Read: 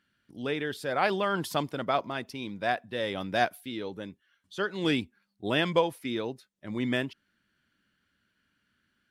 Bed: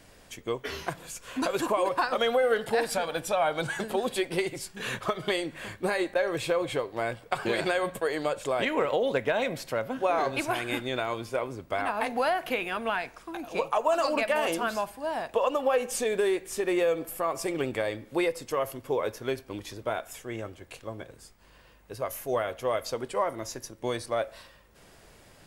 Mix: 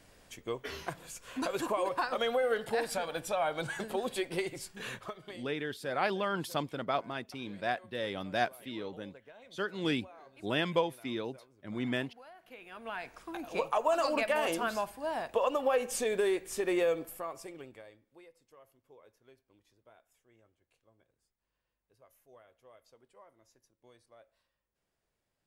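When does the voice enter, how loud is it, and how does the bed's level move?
5.00 s, -4.5 dB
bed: 4.8 s -5.5 dB
5.66 s -27.5 dB
12.34 s -27.5 dB
13.18 s -3.5 dB
16.91 s -3.5 dB
18.2 s -30 dB

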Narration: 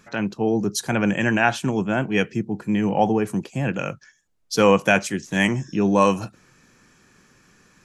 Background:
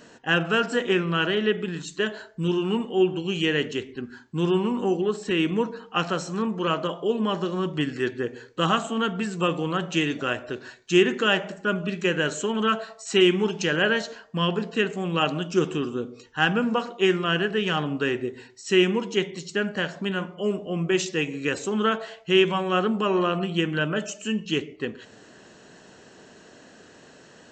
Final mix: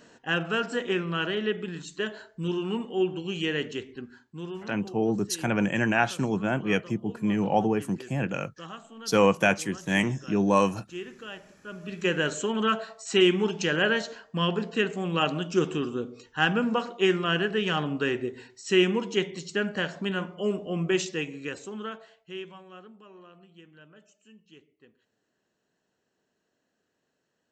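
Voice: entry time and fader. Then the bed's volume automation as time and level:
4.55 s, -4.5 dB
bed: 3.96 s -5 dB
4.78 s -19.5 dB
11.61 s -19.5 dB
12.07 s -2 dB
20.92 s -2 dB
23.06 s -28 dB

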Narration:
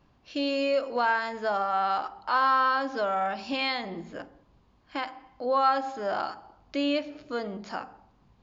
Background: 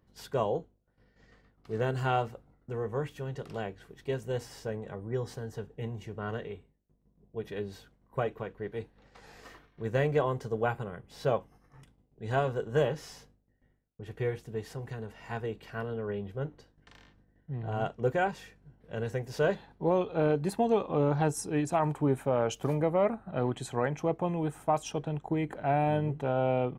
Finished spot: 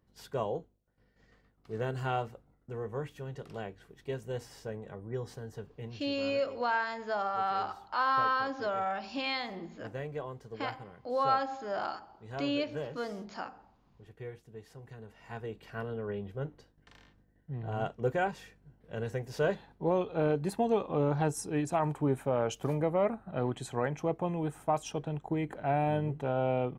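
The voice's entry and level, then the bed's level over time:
5.65 s, -5.0 dB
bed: 5.74 s -4 dB
6.18 s -11.5 dB
14.65 s -11.5 dB
15.8 s -2 dB

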